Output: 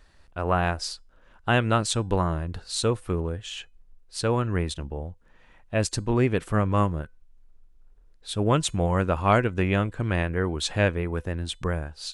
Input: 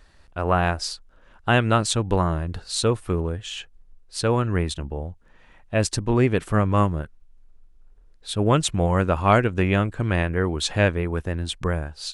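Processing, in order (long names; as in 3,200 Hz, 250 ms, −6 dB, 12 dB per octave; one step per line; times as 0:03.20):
tuned comb filter 500 Hz, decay 0.27 s, harmonics all, mix 30%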